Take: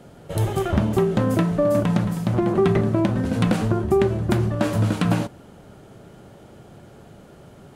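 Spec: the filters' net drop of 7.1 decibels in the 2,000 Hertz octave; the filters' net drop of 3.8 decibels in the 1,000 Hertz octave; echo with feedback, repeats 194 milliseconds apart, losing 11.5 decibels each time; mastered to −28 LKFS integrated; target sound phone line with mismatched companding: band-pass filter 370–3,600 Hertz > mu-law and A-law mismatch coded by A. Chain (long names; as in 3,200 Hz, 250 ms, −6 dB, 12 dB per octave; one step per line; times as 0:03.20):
band-pass filter 370–3,600 Hz
parametric band 1,000 Hz −3 dB
parametric band 2,000 Hz −8 dB
repeating echo 194 ms, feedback 27%, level −11.5 dB
mu-law and A-law mismatch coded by A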